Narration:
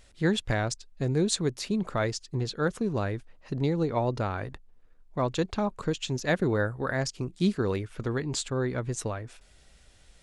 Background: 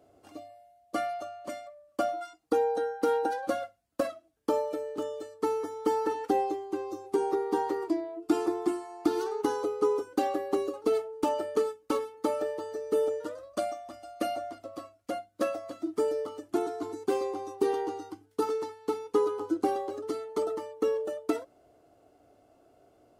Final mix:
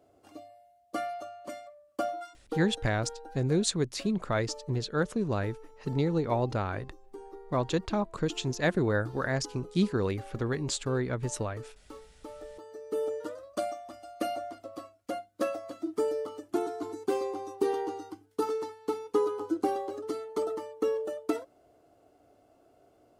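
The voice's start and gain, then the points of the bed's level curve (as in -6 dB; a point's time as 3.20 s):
2.35 s, -1.0 dB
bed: 2.31 s -2.5 dB
2.90 s -18 dB
12.16 s -18 dB
13.22 s -1 dB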